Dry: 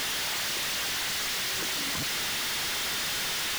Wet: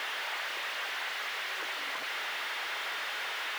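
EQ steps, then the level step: high-pass 340 Hz 12 dB/octave; three-band isolator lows -15 dB, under 440 Hz, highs -22 dB, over 2.9 kHz; treble shelf 6.4 kHz +5.5 dB; 0.0 dB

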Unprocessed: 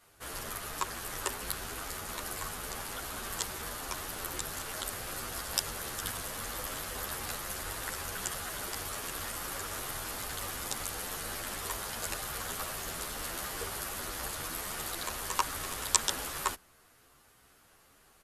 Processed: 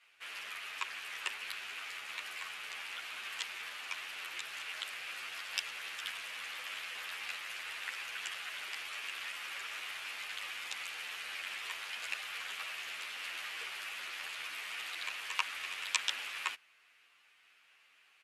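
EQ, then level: band-pass filter 2.5 kHz, Q 3.4; +8.0 dB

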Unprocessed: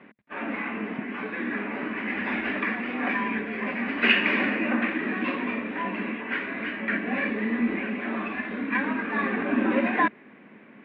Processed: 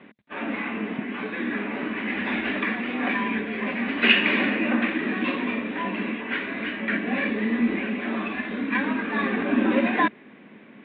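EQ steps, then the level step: resonant low-pass 3.7 kHz, resonance Q 3.8; tilt shelf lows +3 dB; 0.0 dB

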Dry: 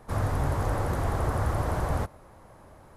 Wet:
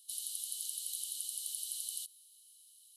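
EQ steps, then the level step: rippled Chebyshev high-pass 2.9 kHz, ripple 9 dB; treble shelf 7.1 kHz +6.5 dB; +8.5 dB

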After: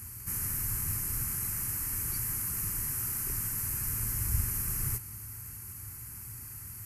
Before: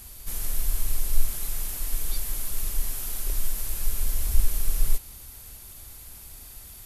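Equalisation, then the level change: high-pass 87 Hz 12 dB/octave; peaking EQ 110 Hz +12.5 dB 0.73 oct; static phaser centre 1.5 kHz, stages 4; +2.0 dB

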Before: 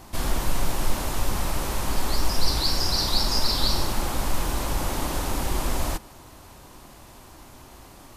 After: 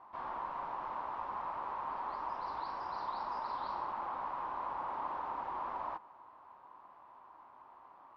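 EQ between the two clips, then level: band-pass filter 1 kHz, Q 4.3; distance through air 260 m; +1.0 dB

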